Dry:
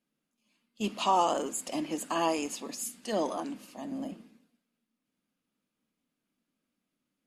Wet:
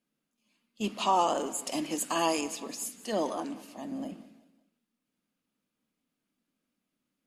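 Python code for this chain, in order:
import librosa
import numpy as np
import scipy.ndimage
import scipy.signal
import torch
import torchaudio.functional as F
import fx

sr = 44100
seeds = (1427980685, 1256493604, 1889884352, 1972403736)

y = fx.high_shelf(x, sr, hz=3500.0, db=8.0, at=(1.67, 2.41))
y = fx.echo_feedback(y, sr, ms=185, feedback_pct=40, wet_db=-18)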